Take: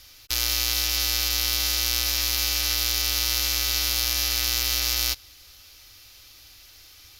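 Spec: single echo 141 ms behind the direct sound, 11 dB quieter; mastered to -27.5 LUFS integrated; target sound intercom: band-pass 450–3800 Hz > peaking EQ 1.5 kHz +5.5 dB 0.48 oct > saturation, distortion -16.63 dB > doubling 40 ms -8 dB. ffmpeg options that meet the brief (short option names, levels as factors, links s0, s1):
-filter_complex "[0:a]highpass=450,lowpass=3800,equalizer=f=1500:t=o:w=0.48:g=5.5,aecho=1:1:141:0.282,asoftclip=threshold=0.133,asplit=2[s0][s1];[s1]adelay=40,volume=0.398[s2];[s0][s2]amix=inputs=2:normalize=0"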